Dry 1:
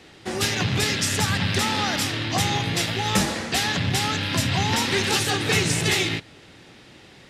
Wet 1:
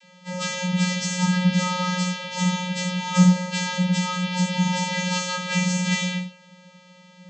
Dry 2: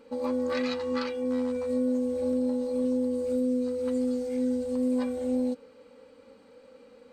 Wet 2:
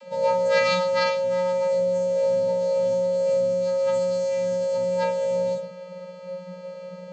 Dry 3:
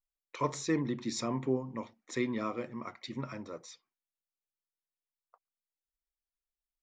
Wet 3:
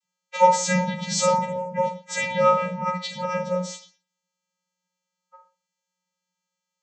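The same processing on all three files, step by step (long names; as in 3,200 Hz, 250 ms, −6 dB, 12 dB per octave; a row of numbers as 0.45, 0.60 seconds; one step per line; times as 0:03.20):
every partial snapped to a pitch grid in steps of 2 semitones
four-comb reverb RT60 0.37 s, combs from 33 ms, DRR 3 dB
channel vocoder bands 32, square 181 Hz
loudness normalisation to −23 LKFS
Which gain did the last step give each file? −3.0, +4.5, +11.0 decibels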